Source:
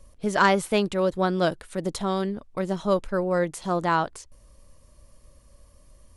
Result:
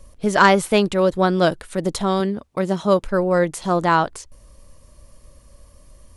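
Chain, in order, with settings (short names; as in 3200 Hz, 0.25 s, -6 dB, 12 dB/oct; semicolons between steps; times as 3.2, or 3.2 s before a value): 2.2–3.04 HPF 72 Hz; gain +6 dB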